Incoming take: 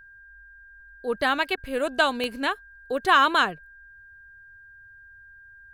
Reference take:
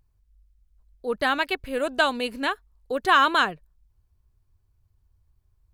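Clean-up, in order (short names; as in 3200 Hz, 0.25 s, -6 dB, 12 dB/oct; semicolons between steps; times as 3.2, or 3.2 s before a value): de-click; notch 1600 Hz, Q 30; interpolate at 1.56, 13 ms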